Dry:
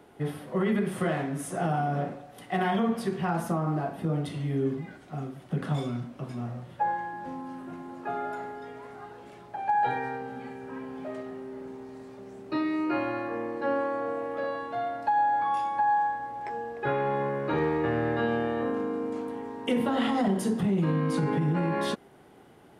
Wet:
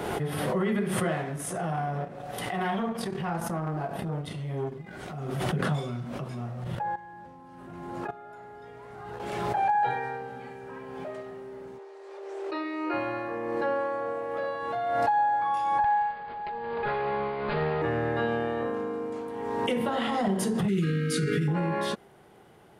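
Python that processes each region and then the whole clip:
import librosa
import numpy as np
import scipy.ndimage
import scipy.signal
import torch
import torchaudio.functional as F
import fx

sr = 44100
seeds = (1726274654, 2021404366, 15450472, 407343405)

y = fx.chain(x, sr, fx.transient(attack_db=-6, sustain_db=-11),
    fx.transformer_sat(knee_hz=440.0), at=(1.36, 5.31))
y = fx.chain(y, sr, fx.low_shelf(hz=130.0, db=11.0),
    fx.level_steps(step_db=15),
    fx.highpass(hz=45.0, slope=12), at=(6.64, 9.2))
y = fx.chain(y, sr, fx.brickwall_highpass(low_hz=300.0),
    fx.air_absorb(metres=53.0), at=(11.78, 12.94))
y = fx.chain(y, sr, fx.lower_of_two(delay_ms=4.8),
    fx.cheby1_lowpass(hz=4800.0, order=8),
    fx.echo_heads(ms=88, heads='second and third', feedback_pct=50, wet_db=-17.5), at=(15.84, 17.82))
y = fx.chain(y, sr, fx.brickwall_bandstop(low_hz=500.0, high_hz=1200.0),
    fx.high_shelf(hz=2300.0, db=9.0), at=(20.68, 21.48))
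y = fx.peak_eq(y, sr, hz=270.0, db=-10.0, octaves=0.28)
y = fx.pre_swell(y, sr, db_per_s=28.0)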